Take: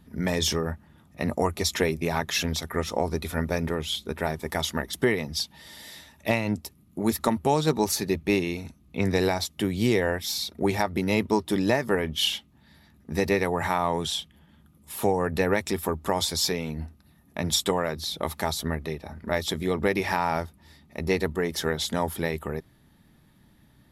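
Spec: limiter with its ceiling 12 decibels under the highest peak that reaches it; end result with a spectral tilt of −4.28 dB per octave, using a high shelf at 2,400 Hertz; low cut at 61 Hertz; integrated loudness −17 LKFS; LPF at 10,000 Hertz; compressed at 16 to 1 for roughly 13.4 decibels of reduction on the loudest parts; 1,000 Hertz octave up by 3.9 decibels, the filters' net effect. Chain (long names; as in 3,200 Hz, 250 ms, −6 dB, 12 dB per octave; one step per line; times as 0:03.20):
high-pass filter 61 Hz
low-pass filter 10,000 Hz
parametric band 1,000 Hz +5.5 dB
high-shelf EQ 2,400 Hz −4.5 dB
downward compressor 16 to 1, threshold −30 dBFS
level +21.5 dB
brickwall limiter −4 dBFS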